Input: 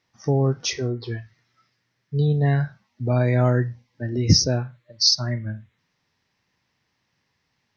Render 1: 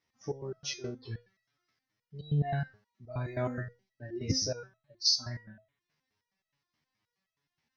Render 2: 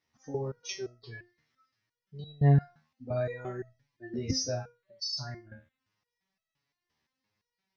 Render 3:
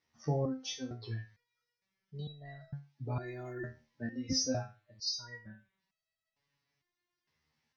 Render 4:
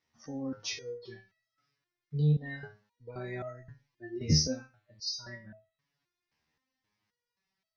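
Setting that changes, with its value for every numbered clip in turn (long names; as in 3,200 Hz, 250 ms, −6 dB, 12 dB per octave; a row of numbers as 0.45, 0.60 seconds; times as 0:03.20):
step-sequenced resonator, speed: 9.5, 5.8, 2.2, 3.8 Hertz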